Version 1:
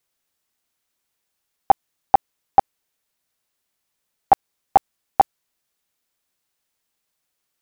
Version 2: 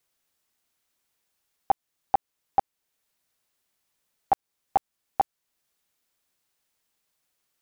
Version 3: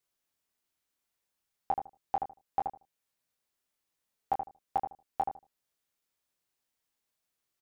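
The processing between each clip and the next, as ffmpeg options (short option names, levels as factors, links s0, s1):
-af "alimiter=limit=0.251:level=0:latency=1:release=444"
-filter_complex "[0:a]asplit=2[s0][s1];[s1]adelay=24,volume=0.473[s2];[s0][s2]amix=inputs=2:normalize=0,asplit=2[s3][s4];[s4]adelay=77,lowpass=f=970:p=1,volume=0.631,asplit=2[s5][s6];[s6]adelay=77,lowpass=f=970:p=1,volume=0.2,asplit=2[s7][s8];[s8]adelay=77,lowpass=f=970:p=1,volume=0.2[s9];[s3][s5][s7][s9]amix=inputs=4:normalize=0,volume=0.376"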